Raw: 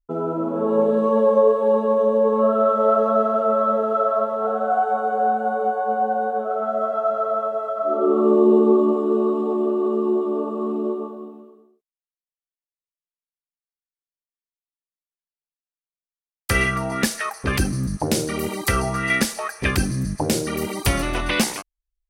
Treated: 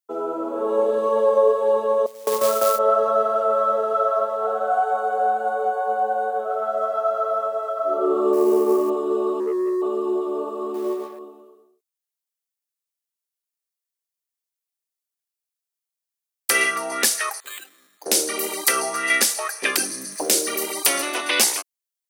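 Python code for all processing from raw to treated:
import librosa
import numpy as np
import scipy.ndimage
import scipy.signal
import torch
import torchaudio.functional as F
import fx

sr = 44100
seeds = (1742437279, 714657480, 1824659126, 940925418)

y = fx.chain(x, sr, fx.gate_hold(open_db=-9.0, close_db=-13.0, hold_ms=71.0, range_db=-21, attack_ms=1.4, release_ms=100.0),
    fx.quant_float(bits=2), at=(2.06, 2.79))
y = fx.chain(y, sr, fx.law_mismatch(coded='A'),
    fx.peak_eq(hz=3600.0, db=-7.5, octaves=0.43), at=(8.33, 8.9))
y = fx.chain(y, sr, fx.spec_expand(power=2.2),
    fx.leveller(passes=1), at=(9.4, 9.82))
y = fx.chain(y, sr, fx.law_mismatch(coded='A'),
    fx.comb(ms=5.4, depth=0.58), at=(10.74, 11.19))
y = fx.chain(y, sr, fx.differentiator(),
    fx.resample_bad(factor=8, down='filtered', up='hold'), at=(17.4, 18.06))
y = fx.chain(y, sr, fx.law_mismatch(coded='mu'),
    fx.notch(hz=860.0, q=7.5), at=(20.12, 20.57))
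y = scipy.signal.sosfilt(scipy.signal.butter(4, 330.0, 'highpass', fs=sr, output='sos'), y)
y = fx.high_shelf(y, sr, hz=3900.0, db=11.5)
y = y * librosa.db_to_amplitude(-1.0)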